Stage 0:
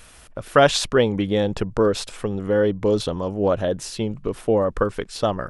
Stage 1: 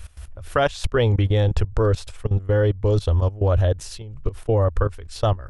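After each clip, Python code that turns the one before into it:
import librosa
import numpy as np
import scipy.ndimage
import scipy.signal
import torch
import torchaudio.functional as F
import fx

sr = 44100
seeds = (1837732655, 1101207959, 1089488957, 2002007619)

y = fx.low_shelf_res(x, sr, hz=120.0, db=13.5, q=3.0)
y = fx.level_steps(y, sr, step_db=18)
y = y * librosa.db_to_amplitude(1.0)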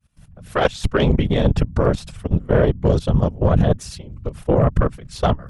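y = fx.fade_in_head(x, sr, length_s=0.67)
y = fx.whisperise(y, sr, seeds[0])
y = fx.cheby_harmonics(y, sr, harmonics=(3, 4), levels_db=(-19, -24), full_scale_db=-6.5)
y = y * librosa.db_to_amplitude(4.5)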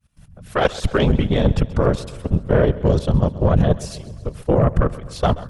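y = fx.echo_feedback(x, sr, ms=131, feedback_pct=59, wet_db=-18)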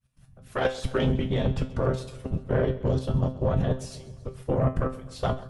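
y = fx.comb_fb(x, sr, f0_hz=130.0, decay_s=0.29, harmonics='all', damping=0.0, mix_pct=80)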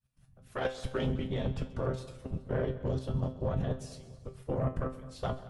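y = fx.echo_feedback(x, sr, ms=212, feedback_pct=42, wet_db=-19.0)
y = y * librosa.db_to_amplitude(-7.5)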